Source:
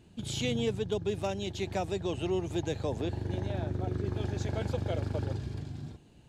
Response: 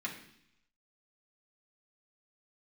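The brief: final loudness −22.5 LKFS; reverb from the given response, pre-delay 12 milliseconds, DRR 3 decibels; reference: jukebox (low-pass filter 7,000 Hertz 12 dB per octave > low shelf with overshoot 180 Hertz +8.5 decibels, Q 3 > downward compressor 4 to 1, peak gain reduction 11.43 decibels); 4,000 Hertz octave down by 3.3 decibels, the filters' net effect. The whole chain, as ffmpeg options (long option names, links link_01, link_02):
-filter_complex "[0:a]equalizer=frequency=4000:width_type=o:gain=-4,asplit=2[link_01][link_02];[1:a]atrim=start_sample=2205,adelay=12[link_03];[link_02][link_03]afir=irnorm=-1:irlink=0,volume=-5.5dB[link_04];[link_01][link_04]amix=inputs=2:normalize=0,lowpass=7000,lowshelf=frequency=180:width_type=q:width=3:gain=8.5,acompressor=threshold=-29dB:ratio=4,volume=10dB"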